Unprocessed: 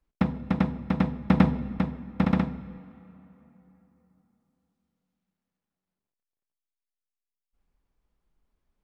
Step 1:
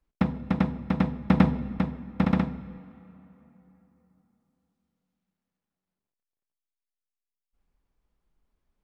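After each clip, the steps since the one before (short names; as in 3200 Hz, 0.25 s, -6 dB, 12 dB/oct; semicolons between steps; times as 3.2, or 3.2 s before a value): nothing audible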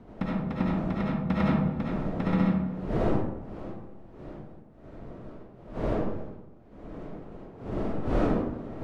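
wind noise 380 Hz -32 dBFS; digital reverb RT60 0.91 s, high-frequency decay 0.45×, pre-delay 30 ms, DRR -5.5 dB; gain -8 dB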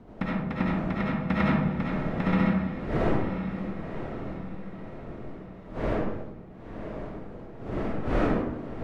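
dynamic EQ 2000 Hz, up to +7 dB, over -52 dBFS, Q 1.1; diffused feedback echo 0.992 s, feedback 42%, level -9 dB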